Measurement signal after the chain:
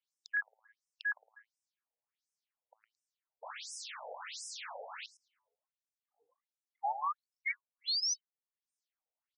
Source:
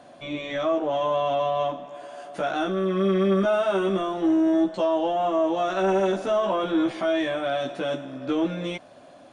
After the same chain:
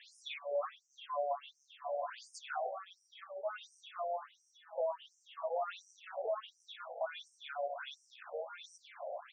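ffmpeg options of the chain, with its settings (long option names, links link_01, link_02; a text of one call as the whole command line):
ffmpeg -i in.wav -filter_complex "[0:a]bandreject=frequency=110:width_type=h:width=4,bandreject=frequency=220:width_type=h:width=4,bandreject=frequency=330:width_type=h:width=4,bandreject=frequency=440:width_type=h:width=4,bandreject=frequency=550:width_type=h:width=4,bandreject=frequency=660:width_type=h:width=4,bandreject=frequency=770:width_type=h:width=4,bandreject=frequency=880:width_type=h:width=4,bandreject=frequency=990:width_type=h:width=4,bandreject=frequency=1100:width_type=h:width=4,bandreject=frequency=1210:width_type=h:width=4,bandreject=frequency=1320:width_type=h:width=4,bandreject=frequency=1430:width_type=h:width=4,bandreject=frequency=1540:width_type=h:width=4,bandreject=frequency=1650:width_type=h:width=4,bandreject=frequency=1760:width_type=h:width=4,bandreject=frequency=1870:width_type=h:width=4,bandreject=frequency=1980:width_type=h:width=4,bandreject=frequency=2090:width_type=h:width=4,bandreject=frequency=2200:width_type=h:width=4,bandreject=frequency=2310:width_type=h:width=4,bandreject=frequency=2420:width_type=h:width=4,bandreject=frequency=2530:width_type=h:width=4,bandreject=frequency=2640:width_type=h:width=4,bandreject=frequency=2750:width_type=h:width=4,bandreject=frequency=2860:width_type=h:width=4,bandreject=frequency=2970:width_type=h:width=4,bandreject=frequency=3080:width_type=h:width=4,alimiter=limit=-19.5dB:level=0:latency=1,acompressor=threshold=-38dB:ratio=12,asplit=2[link_01][link_02];[link_02]adelay=110,lowpass=frequency=2200:poles=1,volume=-9dB,asplit=2[link_03][link_04];[link_04]adelay=110,lowpass=frequency=2200:poles=1,volume=0.3,asplit=2[link_05][link_06];[link_06]adelay=110,lowpass=frequency=2200:poles=1,volume=0.3[link_07];[link_01][link_03][link_05][link_07]amix=inputs=4:normalize=0,afftfilt=real='re*between(b*sr/1024,600*pow(7200/600,0.5+0.5*sin(2*PI*1.4*pts/sr))/1.41,600*pow(7200/600,0.5+0.5*sin(2*PI*1.4*pts/sr))*1.41)':imag='im*between(b*sr/1024,600*pow(7200/600,0.5+0.5*sin(2*PI*1.4*pts/sr))/1.41,600*pow(7200/600,0.5+0.5*sin(2*PI*1.4*pts/sr))*1.41)':win_size=1024:overlap=0.75,volume=7.5dB" out.wav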